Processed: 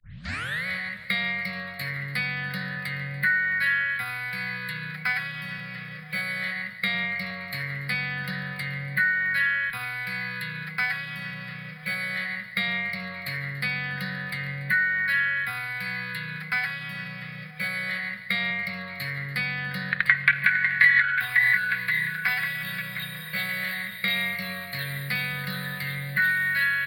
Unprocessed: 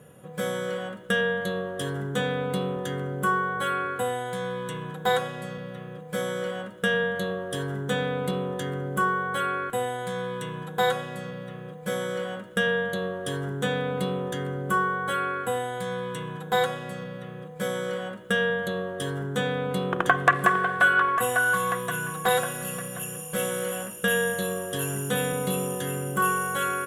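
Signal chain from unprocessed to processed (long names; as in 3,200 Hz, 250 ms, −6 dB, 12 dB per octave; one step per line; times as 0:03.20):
turntable start at the beginning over 0.66 s
echo machine with several playback heads 143 ms, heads all three, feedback 54%, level −23.5 dB
formants moved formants +5 semitones
drawn EQ curve 170 Hz 0 dB, 380 Hz −26 dB, 570 Hz −13 dB, 870 Hz −17 dB, 1,800 Hz +12 dB, 2,800 Hz +3 dB, 4,100 Hz +5 dB, 6,000 Hz −15 dB, 11,000 Hz −3 dB
multiband upward and downward compressor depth 40%
level −3 dB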